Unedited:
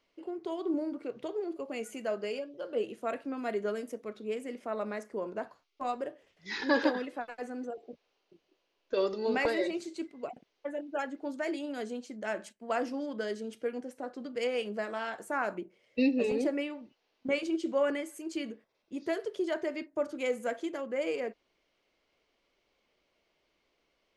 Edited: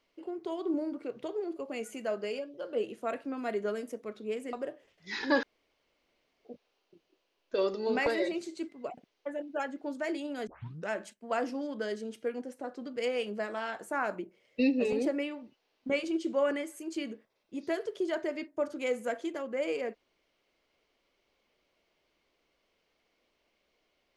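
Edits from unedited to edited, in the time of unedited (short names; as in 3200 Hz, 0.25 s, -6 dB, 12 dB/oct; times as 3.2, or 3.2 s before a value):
4.53–5.92 cut
6.82–7.84 room tone
11.86 tape start 0.42 s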